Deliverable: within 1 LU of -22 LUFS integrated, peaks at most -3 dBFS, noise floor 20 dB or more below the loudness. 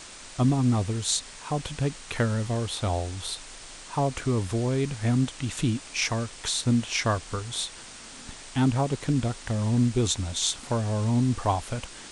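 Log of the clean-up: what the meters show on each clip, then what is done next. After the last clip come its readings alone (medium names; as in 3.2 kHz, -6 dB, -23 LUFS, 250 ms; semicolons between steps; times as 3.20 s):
noise floor -44 dBFS; noise floor target -47 dBFS; loudness -27.0 LUFS; peak level -8.0 dBFS; loudness target -22.0 LUFS
-> noise reduction 6 dB, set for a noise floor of -44 dBFS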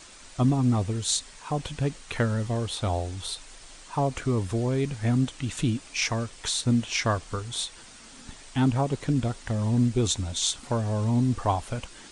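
noise floor -48 dBFS; loudness -27.0 LUFS; peak level -8.5 dBFS; loudness target -22.0 LUFS
-> trim +5 dB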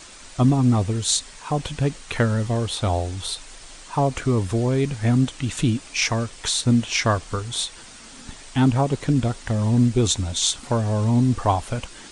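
loudness -22.0 LUFS; peak level -3.5 dBFS; noise floor -43 dBFS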